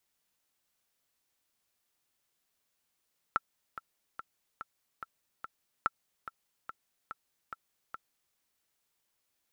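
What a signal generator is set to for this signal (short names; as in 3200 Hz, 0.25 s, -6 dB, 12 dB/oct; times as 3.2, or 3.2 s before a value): metronome 144 bpm, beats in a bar 6, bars 2, 1340 Hz, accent 14 dB -13.5 dBFS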